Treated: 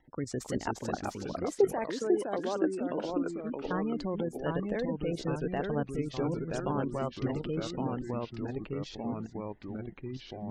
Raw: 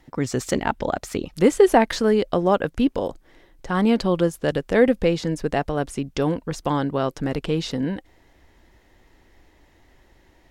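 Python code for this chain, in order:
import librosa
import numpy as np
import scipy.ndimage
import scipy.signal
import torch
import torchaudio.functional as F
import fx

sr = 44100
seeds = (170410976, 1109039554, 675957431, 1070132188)

y = fx.spec_gate(x, sr, threshold_db=-25, keep='strong')
y = fx.cheby1_highpass(y, sr, hz=350.0, order=2, at=(0.67, 3.06))
y = fx.level_steps(y, sr, step_db=12)
y = fx.echo_pitch(y, sr, ms=299, semitones=-2, count=3, db_per_echo=-3.0)
y = y * 10.0 ** (-8.0 / 20.0)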